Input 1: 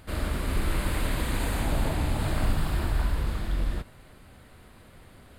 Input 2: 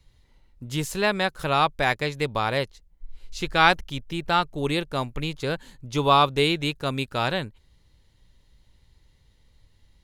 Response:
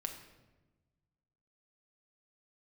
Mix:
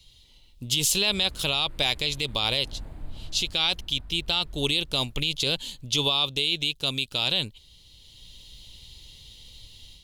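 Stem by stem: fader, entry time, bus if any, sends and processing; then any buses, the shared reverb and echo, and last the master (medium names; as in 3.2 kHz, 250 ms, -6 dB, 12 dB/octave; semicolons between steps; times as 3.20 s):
-11.0 dB, 1.00 s, no send, echo send -18 dB, tilt EQ -2 dB/octave; auto duck -12 dB, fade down 1.60 s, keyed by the second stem
-0.5 dB, 0.00 s, no send, no echo send, resonant high shelf 2.3 kHz +11 dB, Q 3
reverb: none
echo: delay 310 ms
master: level rider gain up to 8 dB; peak limiter -12 dBFS, peak gain reduction 11.5 dB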